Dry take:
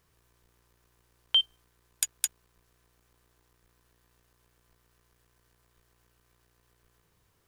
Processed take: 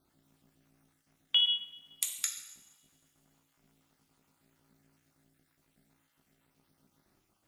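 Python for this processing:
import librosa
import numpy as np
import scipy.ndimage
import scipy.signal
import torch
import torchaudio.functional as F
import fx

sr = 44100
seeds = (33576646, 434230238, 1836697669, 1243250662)

y = fx.spec_dropout(x, sr, seeds[0], share_pct=42)
y = fx.rev_double_slope(y, sr, seeds[1], early_s=0.86, late_s=2.9, knee_db=-25, drr_db=2.0)
y = y * np.sin(2.0 * np.pi * 210.0 * np.arange(len(y)) / sr)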